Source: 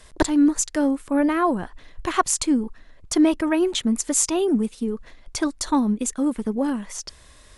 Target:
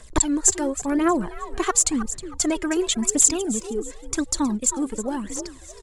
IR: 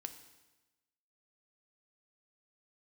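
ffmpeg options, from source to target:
-filter_complex "[0:a]atempo=1.3,asplit=4[s0][s1][s2][s3];[s1]adelay=316,afreqshift=58,volume=0.2[s4];[s2]adelay=632,afreqshift=116,volume=0.0617[s5];[s3]adelay=948,afreqshift=174,volume=0.0193[s6];[s0][s4][s5][s6]amix=inputs=4:normalize=0,aphaser=in_gain=1:out_gain=1:delay=2.7:decay=0.59:speed=0.93:type=triangular,equalizer=f=7400:t=o:w=0.33:g=10,volume=0.75"

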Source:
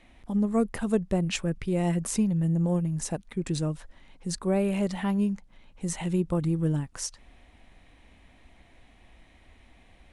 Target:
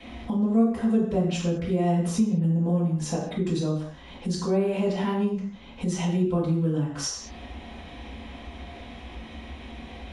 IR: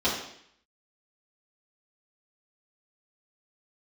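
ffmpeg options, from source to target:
-filter_complex "[0:a]acrossover=split=360|1400|5200[s0][s1][s2][s3];[s2]alimiter=level_in=2.51:limit=0.0631:level=0:latency=1:release=463,volume=0.398[s4];[s0][s1][s4][s3]amix=inputs=4:normalize=0[s5];[1:a]atrim=start_sample=2205,afade=t=out:st=0.27:d=0.01,atrim=end_sample=12348[s6];[s5][s6]afir=irnorm=-1:irlink=0,acompressor=threshold=0.0126:ratio=2,volume=1.5"

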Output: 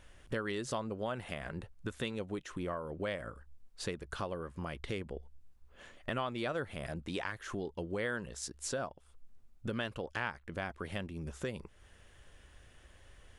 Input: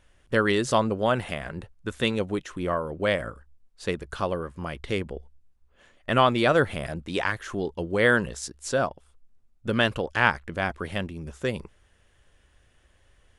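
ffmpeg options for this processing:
-af "acompressor=threshold=0.00708:ratio=3,volume=1.41"

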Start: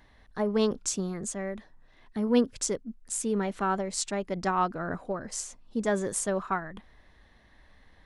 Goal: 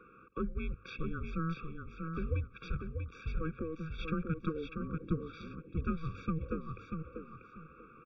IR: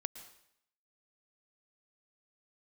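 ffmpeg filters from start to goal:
-af "highpass=f=440:t=q:w=0.5412,highpass=f=440:t=q:w=1.307,lowpass=f=3500:t=q:w=0.5176,lowpass=f=3500:t=q:w=0.7071,lowpass=f=3500:t=q:w=1.932,afreqshift=-380,equalizer=f=860:t=o:w=0.35:g=11.5,acompressor=threshold=0.0141:ratio=10,asetrate=37084,aresample=44100,atempo=1.18921,bandreject=f=50:t=h:w=6,bandreject=f=100:t=h:w=6,aecho=1:1:640|1280|1920:0.531|0.133|0.0332,afftfilt=real='re*eq(mod(floor(b*sr/1024/550),2),0)':imag='im*eq(mod(floor(b*sr/1024/550),2),0)':win_size=1024:overlap=0.75,volume=2.24"

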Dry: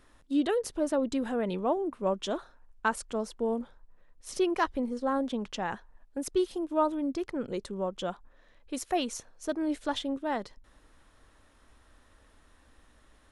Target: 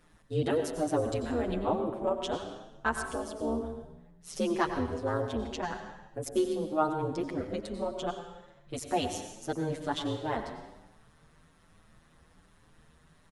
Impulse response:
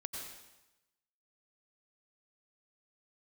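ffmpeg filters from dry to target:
-filter_complex "[0:a]tremolo=f=160:d=1,asplit=2[s0][s1];[1:a]atrim=start_sample=2205[s2];[s1][s2]afir=irnorm=-1:irlink=0,volume=1.33[s3];[s0][s3]amix=inputs=2:normalize=0,asplit=2[s4][s5];[s5]adelay=7.6,afreqshift=1.2[s6];[s4][s6]amix=inputs=2:normalize=1"

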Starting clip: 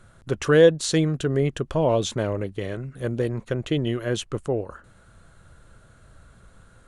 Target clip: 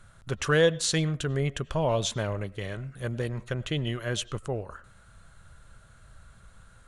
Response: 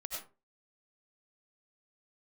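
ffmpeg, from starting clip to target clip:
-filter_complex "[0:a]equalizer=f=340:t=o:w=1.8:g=-9.5,asplit=2[s0][s1];[1:a]atrim=start_sample=2205,lowpass=4500,adelay=5[s2];[s1][s2]afir=irnorm=-1:irlink=0,volume=0.126[s3];[s0][s3]amix=inputs=2:normalize=0"

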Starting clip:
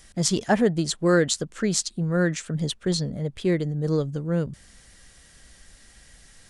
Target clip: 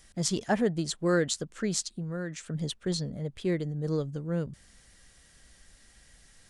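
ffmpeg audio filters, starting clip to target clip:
-filter_complex "[0:a]asettb=1/sr,asplit=3[s0][s1][s2];[s0]atrim=end=1.814[s3];[s1]atrim=start=1.81:end=2.43,asetpts=PTS-STARTPTS,afade=t=in:d=0.004:c=qsin,afade=t=out:st=0.616:d=0.004:c=qsin,acompressor=threshold=0.0447:ratio=3[s4];[s2]atrim=start=2.426[s5];[s3][s4]acrossfade=d=0.004:c1=hsin:c2=qsin[s6];[s6][s5]acrossfade=d=0.004:c1=qsin:c2=hsin,volume=0.501"

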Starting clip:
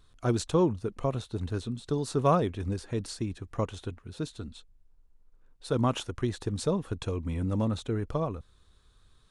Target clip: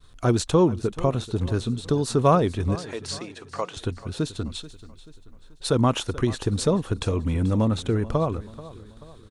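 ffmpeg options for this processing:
-filter_complex "[0:a]asplit=2[s0][s1];[s1]acompressor=threshold=0.0141:ratio=6,volume=1.26[s2];[s0][s2]amix=inputs=2:normalize=0,asettb=1/sr,asplit=3[s3][s4][s5];[s3]atrim=end=2.754[s6];[s4]atrim=start=2.75:end=3.77,asetpts=PTS-STARTPTS,afade=t=in:d=0.004:c=qsin,afade=t=out:st=1.016:d=0.004:c=qsin,highpass=570,lowpass=7700[s7];[s5]atrim=start=3.766[s8];[s6][s7]acrossfade=d=0.004:c1=hsin:c2=qsin[s9];[s9][s8]acrossfade=d=0.004:c1=qsin:c2=hsin,agate=range=0.0224:threshold=0.00355:ratio=3:detection=peak,aecho=1:1:434|868|1302|1736:0.133|0.0627|0.0295|0.0138,asettb=1/sr,asplit=3[s10][s11][s12];[s10]atrim=end=4.434[s13];[s11]atrim=start=4.43:end=5.7,asetpts=PTS-STARTPTS,afade=t=in:d=0.004:c=qsin,afade=t=out:st=1.266:d=0.004:c=qsin,adynamicequalizer=threshold=0.00158:dfrequency=1700:dqfactor=0.7:tfrequency=1700:tqfactor=0.7:attack=5:release=100:ratio=0.375:range=2:mode=boostabove:tftype=highshelf[s14];[s12]atrim=start=5.696[s15];[s13][s14]acrossfade=d=0.004:c1=hsin:c2=qsin[s16];[s16][s15]acrossfade=d=0.004:c1=qsin:c2=hsin,volume=1.58"

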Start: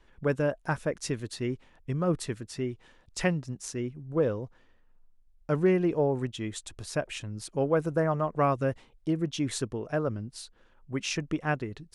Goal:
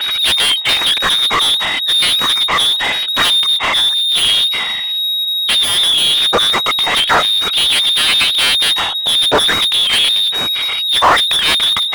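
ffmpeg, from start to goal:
-filter_complex "[0:a]afftfilt=real='re*pow(10,9/40*sin(2*PI*(1.4*log(max(b,1)*sr/1024/100)/log(2)-(0.96)*(pts-256)/sr)))':imag='im*pow(10,9/40*sin(2*PI*(1.4*log(max(b,1)*sr/1024/100)/log(2)-(0.96)*(pts-256)/sr)))':win_size=1024:overlap=0.75,asplit=2[s0][s1];[s1]alimiter=limit=0.0841:level=0:latency=1:release=107,volume=1.26[s2];[s0][s2]amix=inputs=2:normalize=0,lowpass=f=3200:t=q:w=0.5098,lowpass=f=3200:t=q:w=0.6013,lowpass=f=3200:t=q:w=0.9,lowpass=f=3200:t=q:w=2.563,afreqshift=-3800,aeval=exprs='0.501*sin(PI/2*5.62*val(0)/0.501)':c=same,asplit=2[s3][s4];[s4]highpass=f=720:p=1,volume=35.5,asoftclip=type=tanh:threshold=0.501[s5];[s3][s5]amix=inputs=2:normalize=0,lowpass=f=1900:p=1,volume=0.501,volume=1.33"

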